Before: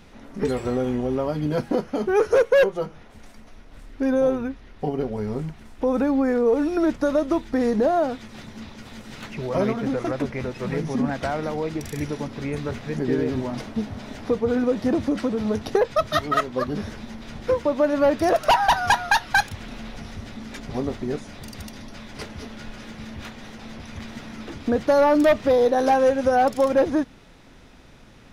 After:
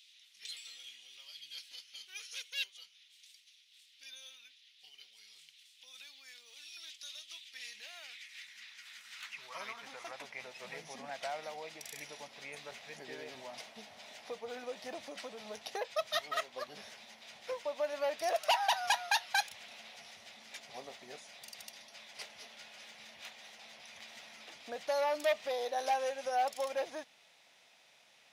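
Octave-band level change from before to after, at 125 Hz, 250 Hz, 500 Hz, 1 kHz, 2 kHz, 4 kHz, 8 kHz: −36.0, −34.0, −18.5, −13.0, −12.5, −5.0, −5.5 decibels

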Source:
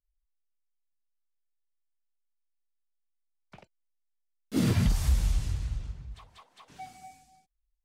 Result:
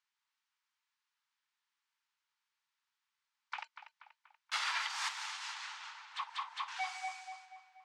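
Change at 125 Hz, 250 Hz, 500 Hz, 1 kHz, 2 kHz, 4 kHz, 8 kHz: below −40 dB, below −40 dB, −20.0 dB, +6.5 dB, +7.0 dB, +4.0 dB, −3.0 dB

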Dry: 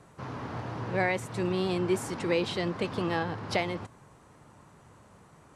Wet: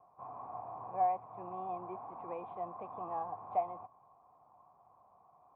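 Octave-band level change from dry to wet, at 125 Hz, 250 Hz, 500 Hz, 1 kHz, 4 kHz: −23.0 dB, −21.0 dB, −11.5 dB, +0.5 dB, below −40 dB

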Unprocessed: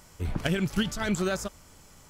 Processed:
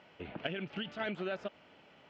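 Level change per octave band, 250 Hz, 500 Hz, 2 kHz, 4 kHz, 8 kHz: −13.0 dB, −7.0 dB, −7.5 dB, −8.0 dB, below −30 dB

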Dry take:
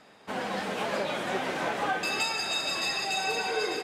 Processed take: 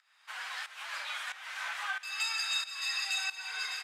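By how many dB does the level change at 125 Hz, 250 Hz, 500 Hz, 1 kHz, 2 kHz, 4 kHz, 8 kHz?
below −40 dB, below −40 dB, −29.0 dB, −11.5 dB, −3.5 dB, −3.0 dB, −3.0 dB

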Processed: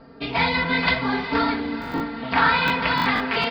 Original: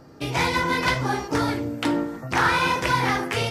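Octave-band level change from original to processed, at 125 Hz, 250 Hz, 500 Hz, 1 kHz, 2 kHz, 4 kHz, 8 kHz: −4.0 dB, +1.0 dB, −1.0 dB, +1.0 dB, +2.5 dB, +2.5 dB, below −15 dB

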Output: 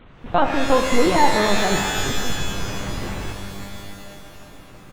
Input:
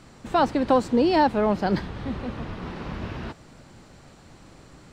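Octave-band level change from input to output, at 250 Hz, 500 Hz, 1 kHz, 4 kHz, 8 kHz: 0.0 dB, +3.0 dB, +4.0 dB, +11.5 dB, can't be measured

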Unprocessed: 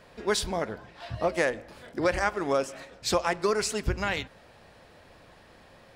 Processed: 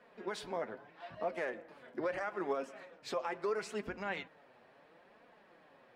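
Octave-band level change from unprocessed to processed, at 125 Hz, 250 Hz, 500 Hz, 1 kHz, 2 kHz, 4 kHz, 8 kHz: −18.5, −11.0, −9.5, −10.0, −11.0, −16.0, −20.5 decibels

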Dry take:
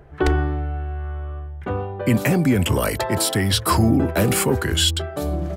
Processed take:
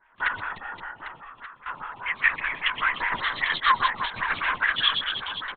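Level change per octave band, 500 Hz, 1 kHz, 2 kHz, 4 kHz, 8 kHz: −22.5 dB, +0.5 dB, +5.5 dB, −2.5 dB, below −40 dB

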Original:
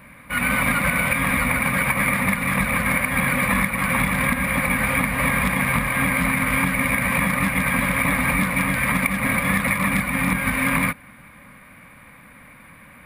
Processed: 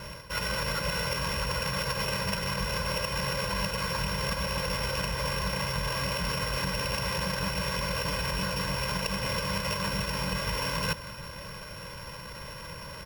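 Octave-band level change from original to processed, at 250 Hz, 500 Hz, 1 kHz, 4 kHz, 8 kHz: −13.5, −3.5, −9.0, +3.5, −8.5 decibels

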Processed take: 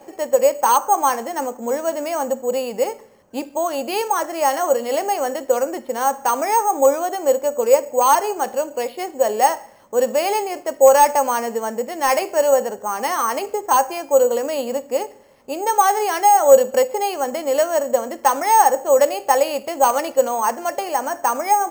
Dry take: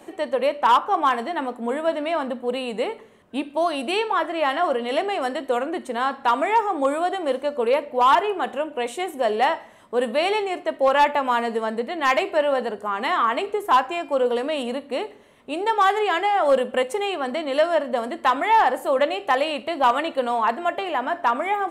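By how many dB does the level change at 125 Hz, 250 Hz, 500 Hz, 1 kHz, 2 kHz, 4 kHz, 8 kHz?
can't be measured, −1.0 dB, +5.0 dB, +3.0 dB, −2.5 dB, −2.0 dB, +19.5 dB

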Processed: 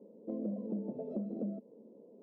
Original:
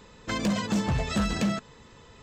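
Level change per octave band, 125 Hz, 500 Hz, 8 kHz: −16.5 dB, −6.5 dB, below −40 dB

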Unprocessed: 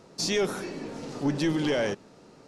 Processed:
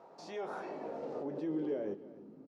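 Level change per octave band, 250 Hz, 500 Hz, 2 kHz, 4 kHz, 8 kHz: −10.5 dB, −9.0 dB, −18.5 dB, below −25 dB, below −25 dB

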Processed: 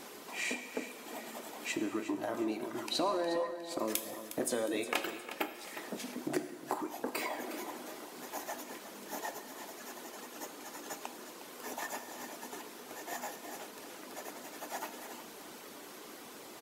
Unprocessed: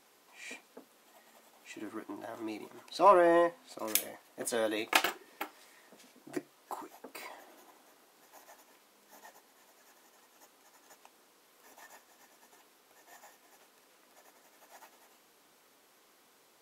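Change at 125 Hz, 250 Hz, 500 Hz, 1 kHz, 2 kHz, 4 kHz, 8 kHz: +2.5, +1.5, −4.0, −5.5, −1.0, 0.0, +1.0 decibels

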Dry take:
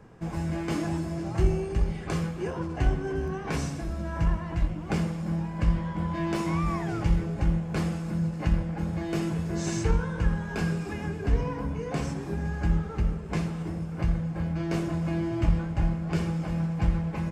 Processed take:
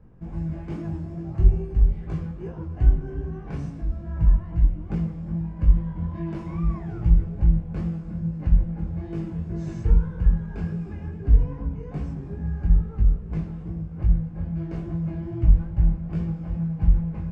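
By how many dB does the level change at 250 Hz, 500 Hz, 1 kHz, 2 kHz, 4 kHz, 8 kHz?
−1.0 dB, −6.0 dB, −9.5 dB, −12.0 dB, below −15 dB, below −20 dB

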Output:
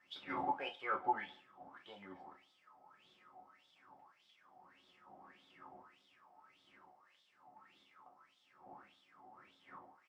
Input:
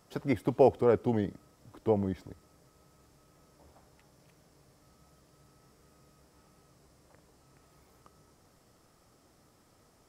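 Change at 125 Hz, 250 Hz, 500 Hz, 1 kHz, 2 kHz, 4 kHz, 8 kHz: −28.0 dB, −19.5 dB, −21.5 dB, −2.0 dB, +0.5 dB, +2.5 dB, can't be measured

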